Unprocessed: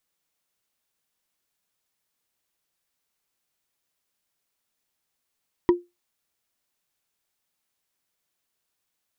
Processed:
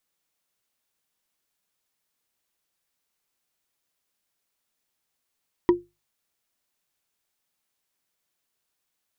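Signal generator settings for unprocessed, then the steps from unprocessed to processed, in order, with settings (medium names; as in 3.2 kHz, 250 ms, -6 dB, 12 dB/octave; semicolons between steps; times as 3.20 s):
wood hit, lowest mode 351 Hz, decay 0.21 s, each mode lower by 8.5 dB, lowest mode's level -10 dB
hum notches 50/100/150 Hz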